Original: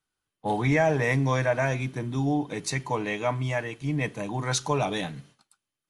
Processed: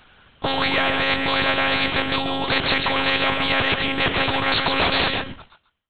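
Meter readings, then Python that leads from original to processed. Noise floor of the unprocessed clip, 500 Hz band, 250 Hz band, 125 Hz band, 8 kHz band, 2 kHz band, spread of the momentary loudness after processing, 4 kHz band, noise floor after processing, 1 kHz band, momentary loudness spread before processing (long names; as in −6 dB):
below −85 dBFS, +2.0 dB, +2.5 dB, −5.0 dB, below −20 dB, +11.0 dB, 4 LU, +17.5 dB, −62 dBFS, +8.0 dB, 8 LU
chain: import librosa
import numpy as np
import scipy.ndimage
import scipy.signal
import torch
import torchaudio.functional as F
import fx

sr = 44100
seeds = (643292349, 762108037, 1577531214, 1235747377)

p1 = fx.fade_out_tail(x, sr, length_s=1.79)
p2 = fx.low_shelf(p1, sr, hz=150.0, db=-7.5)
p3 = fx.over_compress(p2, sr, threshold_db=-31.0, ratio=-0.5)
p4 = p2 + (p3 * 10.0 ** (1.0 / 20.0))
p5 = fx.lpc_monotone(p4, sr, seeds[0], pitch_hz=270.0, order=10)
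p6 = p5 + fx.echo_single(p5, sr, ms=135, db=-13.5, dry=0)
p7 = fx.spectral_comp(p6, sr, ratio=4.0)
y = p7 * 10.0 ** (5.0 / 20.0)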